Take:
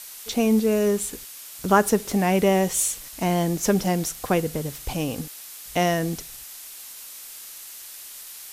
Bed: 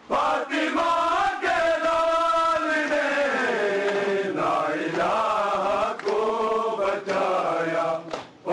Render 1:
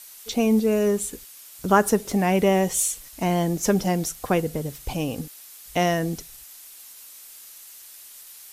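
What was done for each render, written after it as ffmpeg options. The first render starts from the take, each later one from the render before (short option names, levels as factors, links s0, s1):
-af "afftdn=nr=6:nf=-41"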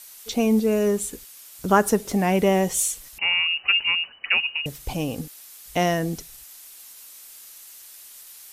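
-filter_complex "[0:a]asettb=1/sr,asplit=3[s0][s1][s2];[s0]atrim=end=3.184[s3];[s1]atrim=start=3.18:end=4.66,asetpts=PTS-STARTPTS,afade=t=in:d=0.004:c=qsin,afade=t=out:st=1.476:d=0.004:c=qsin,lowpass=f=2600:t=q:w=0.5098,lowpass=f=2600:t=q:w=0.6013,lowpass=f=2600:t=q:w=0.9,lowpass=f=2600:t=q:w=2.563,afreqshift=-3000[s4];[s2]atrim=start=4.656[s5];[s3][s4]acrossfade=d=0.004:c1=hsin:c2=qsin[s6];[s6][s5]acrossfade=d=0.004:c1=qsin:c2=hsin"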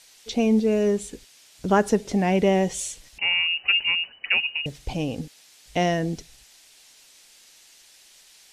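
-af "lowpass=5700,equalizer=f=1200:t=o:w=0.68:g=-7"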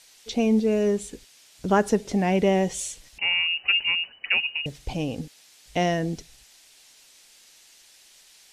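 -af "volume=0.891"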